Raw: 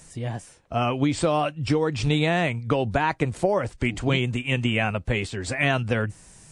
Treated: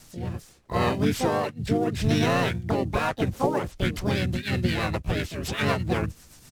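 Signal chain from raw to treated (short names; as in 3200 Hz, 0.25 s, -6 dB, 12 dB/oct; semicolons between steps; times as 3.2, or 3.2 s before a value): CVSD 64 kbps; rotary speaker horn 0.75 Hz, later 8 Hz, at 2.67; harmoniser -7 st -2 dB, -4 st -4 dB, +7 st -2 dB; gain -3.5 dB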